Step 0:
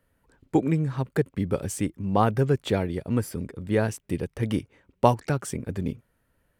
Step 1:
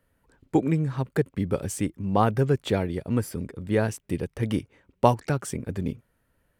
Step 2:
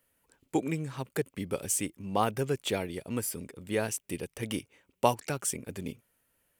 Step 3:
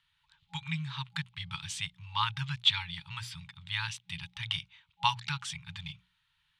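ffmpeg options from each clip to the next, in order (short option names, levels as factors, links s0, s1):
-af anull
-af "lowshelf=f=180:g=-10.5,aexciter=amount=1.6:drive=7.5:freq=2300,volume=0.596"
-af "lowpass=f=3700:t=q:w=5.3,afftfilt=real='re*(1-between(b*sr/4096,180,820))':imag='im*(1-between(b*sr/4096,180,820))':win_size=4096:overlap=0.75,bandreject=f=60:t=h:w=6,bandreject=f=120:t=h:w=6,bandreject=f=180:t=h:w=6"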